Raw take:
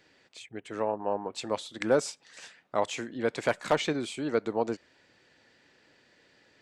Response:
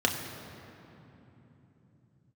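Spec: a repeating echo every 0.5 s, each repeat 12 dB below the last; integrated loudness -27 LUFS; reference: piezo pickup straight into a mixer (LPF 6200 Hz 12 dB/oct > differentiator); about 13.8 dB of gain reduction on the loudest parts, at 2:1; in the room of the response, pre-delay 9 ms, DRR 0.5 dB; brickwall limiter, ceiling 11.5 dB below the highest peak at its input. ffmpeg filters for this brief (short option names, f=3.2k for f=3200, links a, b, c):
-filter_complex "[0:a]acompressor=threshold=-46dB:ratio=2,alimiter=level_in=9.5dB:limit=-24dB:level=0:latency=1,volume=-9.5dB,aecho=1:1:500|1000|1500:0.251|0.0628|0.0157,asplit=2[a][b];[1:a]atrim=start_sample=2205,adelay=9[c];[b][c]afir=irnorm=-1:irlink=0,volume=-12dB[d];[a][d]amix=inputs=2:normalize=0,lowpass=6.2k,aderivative,volume=28.5dB"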